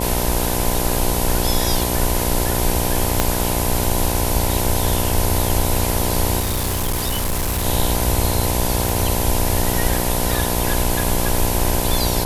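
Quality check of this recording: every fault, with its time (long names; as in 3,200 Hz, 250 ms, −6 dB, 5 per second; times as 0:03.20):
mains buzz 60 Hz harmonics 17 −23 dBFS
0:03.20: click 0 dBFS
0:06.39–0:07.66: clipping −17 dBFS
0:08.89: click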